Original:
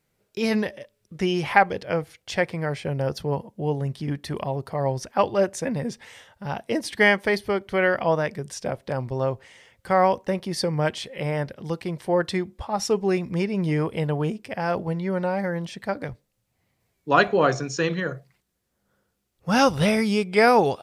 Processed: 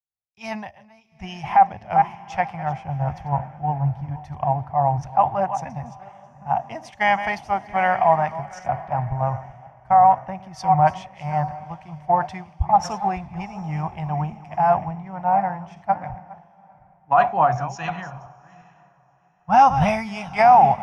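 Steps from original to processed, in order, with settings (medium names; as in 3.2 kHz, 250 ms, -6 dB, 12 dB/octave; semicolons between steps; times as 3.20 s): chunks repeated in reverse 358 ms, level -11.5 dB; FFT filter 110 Hz 0 dB, 480 Hz -26 dB, 740 Hz +8 dB, 1.5 kHz -10 dB, 2.6 kHz -10 dB, 4.2 kHz -25 dB, 6 kHz -14 dB, 8.8 kHz -26 dB; in parallel at +2 dB: compression, threshold -21 dBFS, peak gain reduction 12.5 dB; on the sum: peak limiter -9.5 dBFS, peak gain reduction 9 dB; on a send: echo that smears into a reverb 794 ms, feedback 49%, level -12.5 dB; on the sum: three bands expanded up and down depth 100%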